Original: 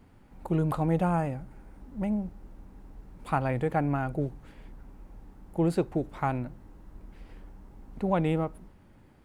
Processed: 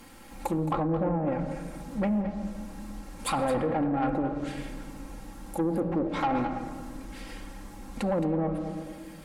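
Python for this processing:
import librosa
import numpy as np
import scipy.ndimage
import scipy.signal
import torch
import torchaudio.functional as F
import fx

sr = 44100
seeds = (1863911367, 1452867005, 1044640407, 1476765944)

p1 = fx.env_lowpass_down(x, sr, base_hz=450.0, full_db=-22.0)
p2 = fx.tilt_eq(p1, sr, slope=2.0)
p3 = fx.hum_notches(p2, sr, base_hz=60, count=3)
p4 = fx.room_shoebox(p3, sr, seeds[0], volume_m3=2000.0, walls='mixed', distance_m=0.78)
p5 = fx.over_compress(p4, sr, threshold_db=-34.0, ratio=-1.0)
p6 = p4 + F.gain(torch.from_numpy(p5), 2.0).numpy()
p7 = fx.high_shelf(p6, sr, hz=3600.0, db=8.0)
p8 = p7 + 0.62 * np.pad(p7, (int(3.7 * sr / 1000.0), 0))[:len(p7)]
p9 = 10.0 ** (-20.0 / 20.0) * np.tanh(p8 / 10.0 ** (-20.0 / 20.0))
p10 = p9 + 10.0 ** (-12.0 / 20.0) * np.pad(p9, (int(219 * sr / 1000.0), 0))[:len(p9)]
y = fx.doppler_dist(p10, sr, depth_ms=0.12)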